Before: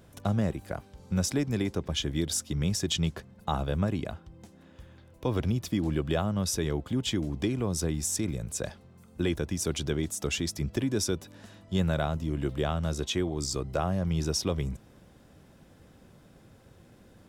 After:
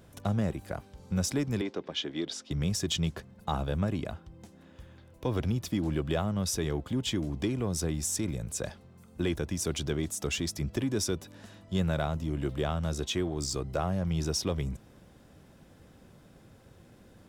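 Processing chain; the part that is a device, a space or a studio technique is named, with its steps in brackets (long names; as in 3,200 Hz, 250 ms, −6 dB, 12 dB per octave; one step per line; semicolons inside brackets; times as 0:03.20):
parallel distortion (in parallel at −10 dB: hard clipping −33.5 dBFS, distortion −4 dB)
0:01.61–0:02.51: on the sum: Chebyshev band-pass filter 300–4,000 Hz, order 2
level −2.5 dB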